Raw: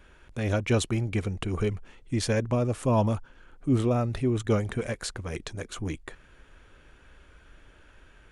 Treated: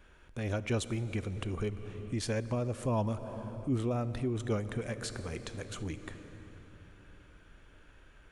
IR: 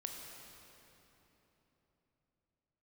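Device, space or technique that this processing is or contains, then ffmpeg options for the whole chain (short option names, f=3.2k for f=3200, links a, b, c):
ducked reverb: -filter_complex "[0:a]asplit=3[a][b][c];[1:a]atrim=start_sample=2205[d];[b][d]afir=irnorm=-1:irlink=0[e];[c]apad=whole_len=366727[f];[e][f]sidechaincompress=threshold=-32dB:ratio=8:attack=16:release=253,volume=0.5dB[g];[a][g]amix=inputs=2:normalize=0,volume=-9dB"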